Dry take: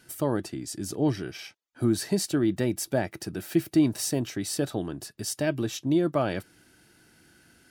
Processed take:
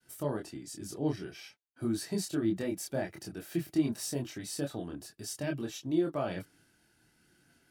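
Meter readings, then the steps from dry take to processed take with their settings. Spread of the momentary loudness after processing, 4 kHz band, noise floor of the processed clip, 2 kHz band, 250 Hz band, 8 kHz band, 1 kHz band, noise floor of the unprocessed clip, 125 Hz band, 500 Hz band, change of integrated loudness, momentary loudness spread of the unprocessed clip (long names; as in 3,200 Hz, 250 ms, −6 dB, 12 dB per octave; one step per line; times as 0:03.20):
12 LU, −7.5 dB, −70 dBFS, −7.5 dB, −7.0 dB, −7.5 dB, −7.5 dB, −61 dBFS, −7.5 dB, −7.0 dB, −7.0 dB, 11 LU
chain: downward expander −56 dBFS
multi-voice chorus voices 4, 0.48 Hz, delay 25 ms, depth 3.7 ms
level −4.5 dB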